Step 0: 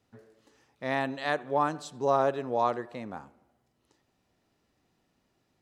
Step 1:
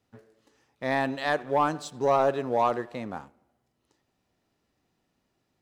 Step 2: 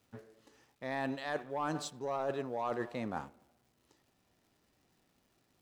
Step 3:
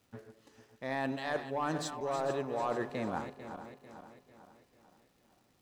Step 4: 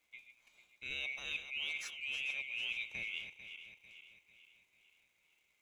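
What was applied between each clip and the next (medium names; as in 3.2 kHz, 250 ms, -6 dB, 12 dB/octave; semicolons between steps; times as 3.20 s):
waveshaping leveller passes 1
reverse; compression 8:1, threshold -34 dBFS, peak gain reduction 15.5 dB; reverse; crackle 390 per s -64 dBFS; trim +1 dB
backward echo that repeats 223 ms, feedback 68%, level -10 dB; trim +1.5 dB
split-band scrambler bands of 2 kHz; trim -6.5 dB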